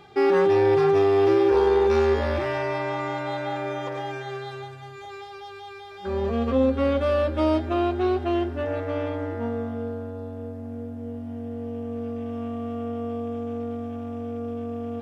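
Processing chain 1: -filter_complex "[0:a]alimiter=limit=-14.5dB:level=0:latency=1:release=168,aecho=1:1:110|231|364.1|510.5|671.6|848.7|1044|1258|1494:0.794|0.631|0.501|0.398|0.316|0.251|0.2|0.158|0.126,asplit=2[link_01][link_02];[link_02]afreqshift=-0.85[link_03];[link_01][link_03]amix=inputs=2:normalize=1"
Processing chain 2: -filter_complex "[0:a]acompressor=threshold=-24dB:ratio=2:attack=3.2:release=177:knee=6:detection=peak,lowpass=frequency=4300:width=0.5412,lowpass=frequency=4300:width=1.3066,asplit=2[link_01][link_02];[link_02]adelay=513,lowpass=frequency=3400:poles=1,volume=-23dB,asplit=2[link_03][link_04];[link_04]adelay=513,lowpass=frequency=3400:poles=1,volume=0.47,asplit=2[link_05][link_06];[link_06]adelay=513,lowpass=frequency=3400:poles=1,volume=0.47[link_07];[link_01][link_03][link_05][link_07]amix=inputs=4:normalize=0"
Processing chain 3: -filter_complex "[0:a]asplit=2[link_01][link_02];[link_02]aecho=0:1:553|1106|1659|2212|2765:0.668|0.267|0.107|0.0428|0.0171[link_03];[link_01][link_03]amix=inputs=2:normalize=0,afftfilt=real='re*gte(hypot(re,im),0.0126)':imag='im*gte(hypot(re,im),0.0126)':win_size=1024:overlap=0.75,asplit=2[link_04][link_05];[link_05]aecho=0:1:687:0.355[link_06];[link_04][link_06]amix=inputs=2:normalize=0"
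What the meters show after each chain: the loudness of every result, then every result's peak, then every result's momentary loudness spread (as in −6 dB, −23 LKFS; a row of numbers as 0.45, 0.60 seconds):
−27.0, −28.5, −23.0 LKFS; −9.5, −15.0, −7.5 dBFS; 14, 11, 16 LU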